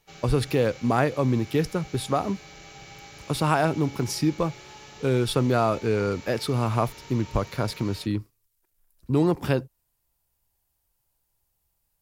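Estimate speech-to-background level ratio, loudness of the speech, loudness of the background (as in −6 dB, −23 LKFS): 19.0 dB, −25.5 LKFS, −44.5 LKFS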